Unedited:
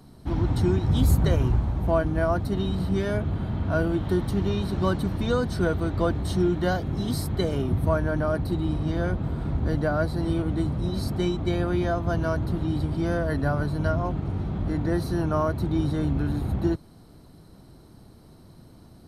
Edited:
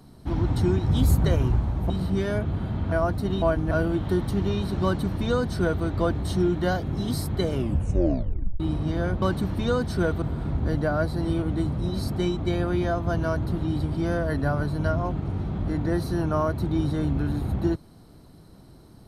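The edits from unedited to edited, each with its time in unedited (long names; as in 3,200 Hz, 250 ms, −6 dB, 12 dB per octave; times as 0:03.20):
0:01.90–0:02.19: swap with 0:02.69–0:03.71
0:04.84–0:05.84: duplicate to 0:09.22
0:07.54: tape stop 1.06 s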